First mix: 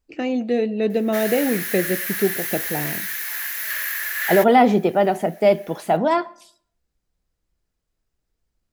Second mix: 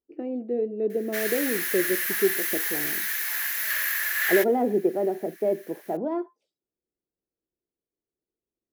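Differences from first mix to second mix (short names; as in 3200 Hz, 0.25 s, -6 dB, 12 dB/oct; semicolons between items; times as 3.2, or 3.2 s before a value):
speech: add band-pass 370 Hz, Q 2.6; reverb: off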